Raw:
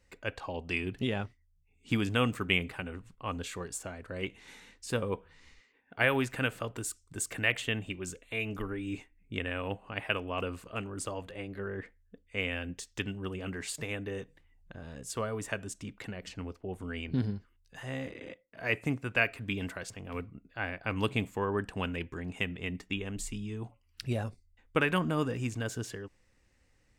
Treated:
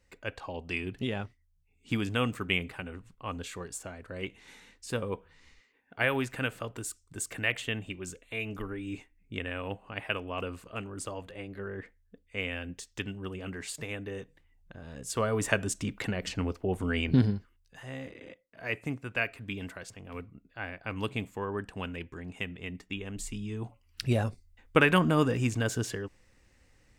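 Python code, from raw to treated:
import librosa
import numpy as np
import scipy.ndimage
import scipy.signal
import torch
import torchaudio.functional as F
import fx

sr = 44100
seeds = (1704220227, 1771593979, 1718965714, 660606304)

y = fx.gain(x, sr, db=fx.line((14.81, -1.0), (15.46, 8.5), (17.12, 8.5), (17.78, -3.0), (22.87, -3.0), (24.01, 5.5)))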